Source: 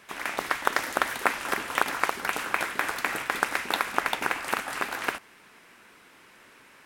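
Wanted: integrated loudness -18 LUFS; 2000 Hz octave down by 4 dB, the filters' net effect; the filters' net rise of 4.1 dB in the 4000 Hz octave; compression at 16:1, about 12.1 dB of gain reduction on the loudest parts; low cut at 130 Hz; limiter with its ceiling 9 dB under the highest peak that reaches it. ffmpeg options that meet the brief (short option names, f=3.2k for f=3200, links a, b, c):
-af "highpass=130,equalizer=f=2k:t=o:g=-7,equalizer=f=4k:t=o:g=7.5,acompressor=threshold=-33dB:ratio=16,volume=22dB,alimiter=limit=-2.5dB:level=0:latency=1"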